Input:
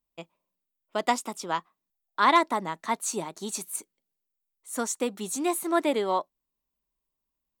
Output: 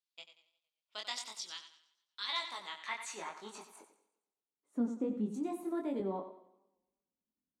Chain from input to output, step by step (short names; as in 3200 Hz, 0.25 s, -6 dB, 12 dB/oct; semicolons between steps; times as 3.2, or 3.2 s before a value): compressor 1.5:1, threshold -27 dBFS, peak gain reduction 4.5 dB; 1.4–2.29 bell 760 Hz -13.5 dB 1.9 oct; band-pass sweep 4100 Hz -> 240 Hz, 2.56–4.67; 5.34–6 RIAA curve recording; thinning echo 92 ms, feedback 36%, high-pass 160 Hz, level -11 dB; chorus 0.46 Hz, delay 19 ms, depth 5 ms; in parallel at +0.5 dB: limiter -36.5 dBFS, peak gain reduction 8.5 dB; on the sum: warbling echo 0.116 s, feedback 50%, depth 98 cents, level -22.5 dB; gain +1 dB